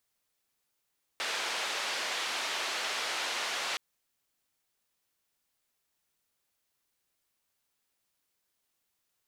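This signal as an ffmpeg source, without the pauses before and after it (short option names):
-f lavfi -i "anoisesrc=c=white:d=2.57:r=44100:seed=1,highpass=f=520,lowpass=f=4000,volume=-21.5dB"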